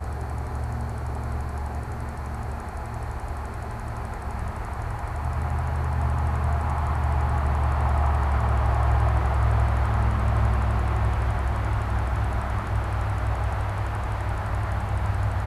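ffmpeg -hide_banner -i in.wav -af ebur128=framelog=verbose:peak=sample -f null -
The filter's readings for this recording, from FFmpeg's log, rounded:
Integrated loudness:
  I:         -26.6 LUFS
  Threshold: -36.6 LUFS
Loudness range:
  LRA:         9.0 LU
  Threshold: -46.2 LUFS
  LRA low:   -32.4 LUFS
  LRA high:  -23.5 LUFS
Sample peak:
  Peak:      -10.7 dBFS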